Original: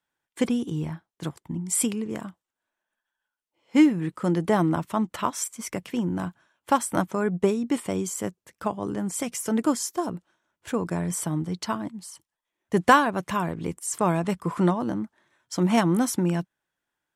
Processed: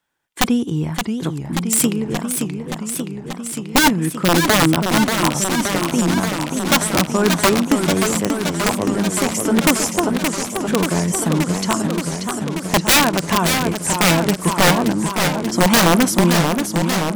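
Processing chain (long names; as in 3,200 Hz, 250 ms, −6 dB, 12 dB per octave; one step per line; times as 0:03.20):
wrap-around overflow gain 15.5 dB
feedback echo with a swinging delay time 578 ms, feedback 77%, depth 196 cents, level −6 dB
level +8 dB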